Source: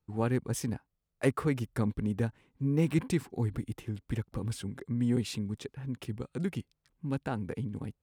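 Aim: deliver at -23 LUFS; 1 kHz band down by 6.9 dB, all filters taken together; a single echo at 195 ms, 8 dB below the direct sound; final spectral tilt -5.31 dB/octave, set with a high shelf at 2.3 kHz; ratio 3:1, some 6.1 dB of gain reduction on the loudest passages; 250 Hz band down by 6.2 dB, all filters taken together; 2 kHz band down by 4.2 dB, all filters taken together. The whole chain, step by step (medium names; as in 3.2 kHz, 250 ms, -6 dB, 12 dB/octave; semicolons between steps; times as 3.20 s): peaking EQ 250 Hz -8 dB; peaking EQ 1 kHz -8.5 dB; peaking EQ 2 kHz -5.5 dB; treble shelf 2.3 kHz +5.5 dB; compression 3:1, threshold -33 dBFS; delay 195 ms -8 dB; trim +16 dB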